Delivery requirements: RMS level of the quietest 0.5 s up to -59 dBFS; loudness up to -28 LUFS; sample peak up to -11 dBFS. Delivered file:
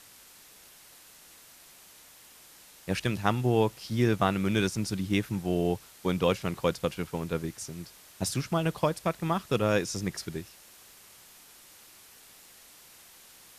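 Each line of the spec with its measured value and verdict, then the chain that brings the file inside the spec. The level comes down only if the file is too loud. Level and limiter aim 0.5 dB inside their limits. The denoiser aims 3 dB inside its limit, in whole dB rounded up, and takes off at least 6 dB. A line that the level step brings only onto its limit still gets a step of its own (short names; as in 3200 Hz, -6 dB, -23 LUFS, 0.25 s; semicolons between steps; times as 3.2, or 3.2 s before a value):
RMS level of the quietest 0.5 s -54 dBFS: fail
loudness -29.5 LUFS: OK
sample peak -8.0 dBFS: fail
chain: denoiser 8 dB, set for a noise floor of -54 dBFS; limiter -11.5 dBFS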